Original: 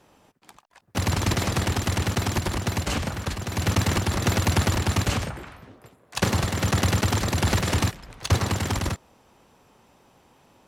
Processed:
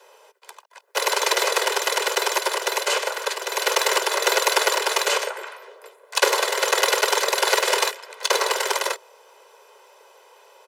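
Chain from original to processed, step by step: steep high-pass 390 Hz 96 dB/octave; comb 2 ms, depth 55%; trim +6.5 dB

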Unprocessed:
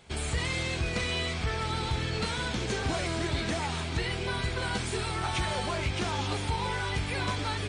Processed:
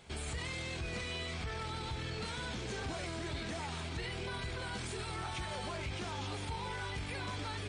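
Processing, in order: peak limiter -30.5 dBFS, peak gain reduction 9 dB; trim -1.5 dB

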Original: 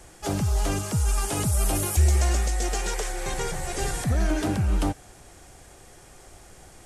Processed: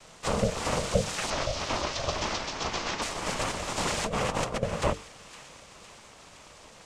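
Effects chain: noise-vocoded speech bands 4; 1.30–3.02 s: elliptic band-pass 240–5700 Hz; ring modulator 330 Hz; hum notches 50/100/150/200/250/300/350/400/450 Hz; feedback echo behind a high-pass 511 ms, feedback 58%, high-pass 1.8 kHz, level -14 dB; 3.87–4.63 s: compressor with a negative ratio -33 dBFS, ratio -0.5; trim +4 dB

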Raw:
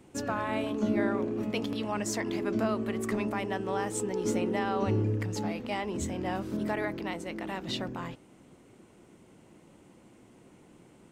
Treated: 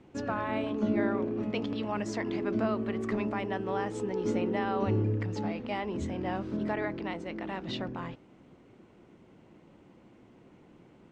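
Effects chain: distance through air 150 m

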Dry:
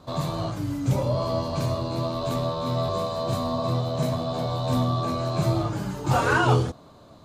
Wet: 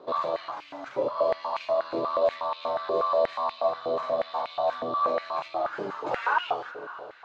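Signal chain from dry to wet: peaking EQ 12 kHz -6.5 dB 0.21 oct; compression, threshold -24 dBFS, peak gain reduction 9 dB; distance through air 230 m; echo that smears into a reverb 515 ms, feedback 52%, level -16 dB; step-sequenced high-pass 8.3 Hz 420–2500 Hz

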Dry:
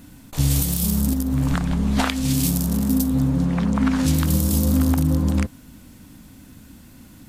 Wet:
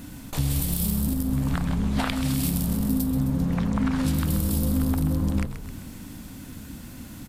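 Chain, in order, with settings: dynamic bell 6.4 kHz, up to -7 dB, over -47 dBFS, Q 2.4; compression 2:1, threshold -34 dBFS, peak gain reduction 11 dB; on a send: frequency-shifting echo 131 ms, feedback 58%, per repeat -57 Hz, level -10 dB; on the sum: trim +4.5 dB

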